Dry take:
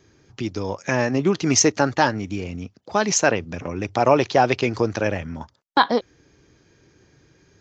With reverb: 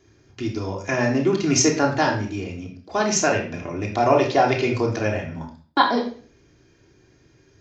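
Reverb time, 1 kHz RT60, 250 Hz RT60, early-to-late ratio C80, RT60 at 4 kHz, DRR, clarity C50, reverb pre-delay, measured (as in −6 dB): 0.40 s, 0.40 s, 0.55 s, 11.5 dB, 0.40 s, −0.5 dB, 7.5 dB, 3 ms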